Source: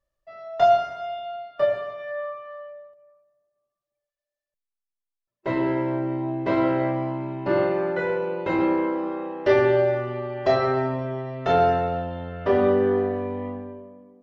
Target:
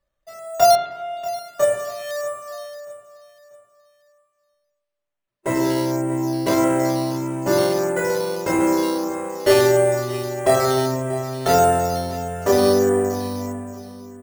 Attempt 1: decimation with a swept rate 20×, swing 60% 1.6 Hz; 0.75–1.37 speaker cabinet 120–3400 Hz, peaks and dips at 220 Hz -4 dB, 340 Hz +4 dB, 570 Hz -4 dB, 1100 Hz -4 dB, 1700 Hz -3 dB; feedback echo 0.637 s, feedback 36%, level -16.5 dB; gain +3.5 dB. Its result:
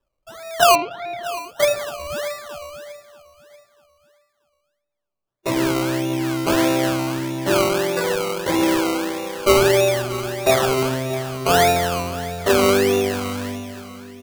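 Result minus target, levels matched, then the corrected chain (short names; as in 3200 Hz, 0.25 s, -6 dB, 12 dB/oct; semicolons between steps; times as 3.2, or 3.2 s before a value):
decimation with a swept rate: distortion +11 dB
decimation with a swept rate 7×, swing 60% 1.6 Hz; 0.75–1.37 speaker cabinet 120–3400 Hz, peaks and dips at 220 Hz -4 dB, 340 Hz +4 dB, 570 Hz -4 dB, 1100 Hz -4 dB, 1700 Hz -3 dB; feedback echo 0.637 s, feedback 36%, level -16.5 dB; gain +3.5 dB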